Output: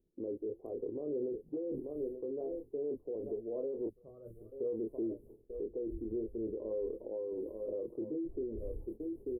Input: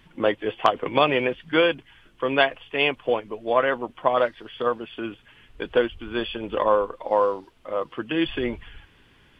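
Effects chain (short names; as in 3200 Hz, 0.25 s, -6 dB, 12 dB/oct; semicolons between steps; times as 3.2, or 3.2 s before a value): fifteen-band EQ 160 Hz -9 dB, 400 Hz +10 dB, 2500 Hz +7 dB; on a send: echo 0.887 s -20 dB; on the sum: gate -45 dBFS, range -20 dB; reverse; compressor 10:1, threshold -27 dBFS, peak gain reduction 18 dB; reverse; dynamic EQ 740 Hz, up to -6 dB, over -46 dBFS, Q 1.5; inverse Chebyshev band-stop 1800–4000 Hz, stop band 80 dB; doubler 27 ms -6 dB; spectral gain 3.89–4.52, 210–1100 Hz -17 dB; limiter -33 dBFS, peak gain reduction 13 dB; noise-modulated level, depth 60%; gain +5 dB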